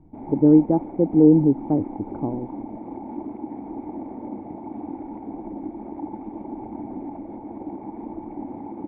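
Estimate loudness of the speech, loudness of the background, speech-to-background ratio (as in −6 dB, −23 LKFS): −18.0 LKFS, −35.0 LKFS, 17.0 dB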